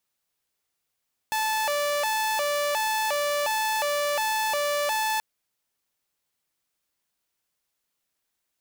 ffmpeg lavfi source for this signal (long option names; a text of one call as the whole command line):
ffmpeg -f lavfi -i "aevalsrc='0.0891*(2*mod((727.5*t+144.5/1.4*(0.5-abs(mod(1.4*t,1)-0.5))),1)-1)':duration=3.88:sample_rate=44100" out.wav